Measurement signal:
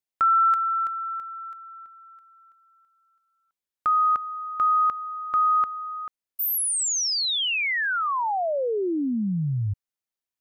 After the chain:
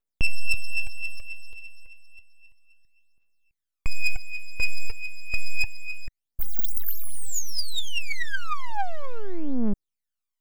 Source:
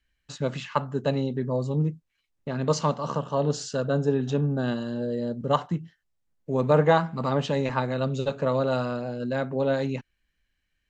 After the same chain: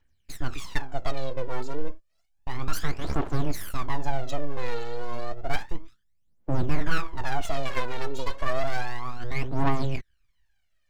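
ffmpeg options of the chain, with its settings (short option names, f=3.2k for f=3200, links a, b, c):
-af "aeval=exprs='abs(val(0))':c=same,aphaser=in_gain=1:out_gain=1:delay=2.3:decay=0.73:speed=0.31:type=triangular,acontrast=61,volume=-8.5dB"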